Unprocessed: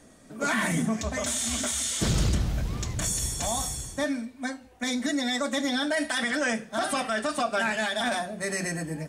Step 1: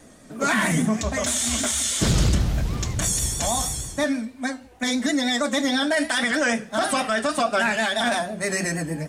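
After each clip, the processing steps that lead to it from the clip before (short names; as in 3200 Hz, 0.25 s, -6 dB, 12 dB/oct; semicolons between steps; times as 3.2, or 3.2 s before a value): vibrato 6.3 Hz 51 cents; gain +5 dB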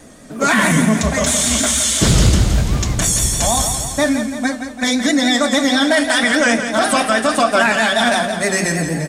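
feedback echo 0.169 s, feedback 57%, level -9 dB; gain +7 dB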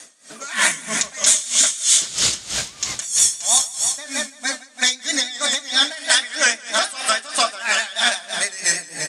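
weighting filter ITU-R 468; compressor 1.5:1, threshold -14 dBFS, peak gain reduction 4.5 dB; dB-linear tremolo 3.1 Hz, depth 19 dB; gain -1.5 dB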